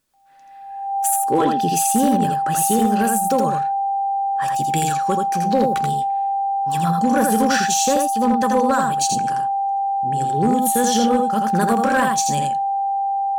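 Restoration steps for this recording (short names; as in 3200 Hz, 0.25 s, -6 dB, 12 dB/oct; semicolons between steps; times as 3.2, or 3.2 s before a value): clip repair -10 dBFS; notch 790 Hz, Q 30; inverse comb 82 ms -4 dB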